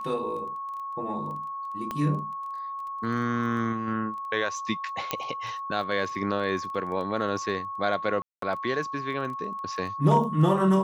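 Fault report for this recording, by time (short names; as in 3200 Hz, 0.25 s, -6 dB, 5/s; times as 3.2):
crackle 10/s -36 dBFS
tone 1100 Hz -32 dBFS
1.91 pop -18 dBFS
5.11 pop -10 dBFS
8.22–8.42 gap 0.203 s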